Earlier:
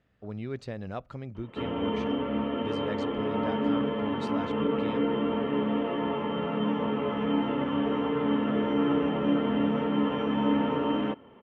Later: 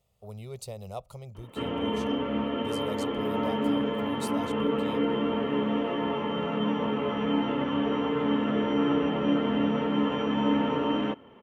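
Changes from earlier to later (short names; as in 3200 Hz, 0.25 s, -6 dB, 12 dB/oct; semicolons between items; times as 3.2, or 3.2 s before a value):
speech: add fixed phaser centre 680 Hz, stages 4; master: remove air absorption 170 m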